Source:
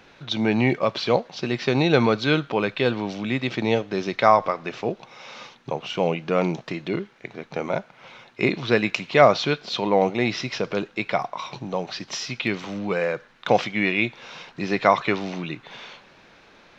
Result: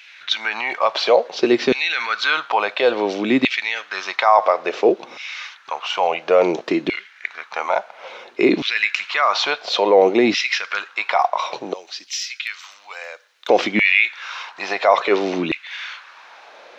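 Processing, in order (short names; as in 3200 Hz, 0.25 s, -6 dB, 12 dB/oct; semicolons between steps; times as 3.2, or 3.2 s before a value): 11.73–13.49 differentiator; limiter -13 dBFS, peak gain reduction 11.5 dB; LFO high-pass saw down 0.58 Hz 260–2500 Hz; gain +6.5 dB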